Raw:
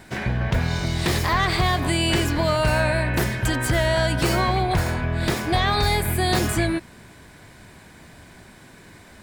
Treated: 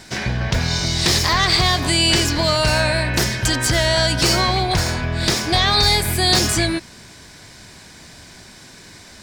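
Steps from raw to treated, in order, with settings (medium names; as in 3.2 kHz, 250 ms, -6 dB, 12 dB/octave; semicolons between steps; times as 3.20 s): peaking EQ 5.4 kHz +14 dB 1.3 oct; trim +1.5 dB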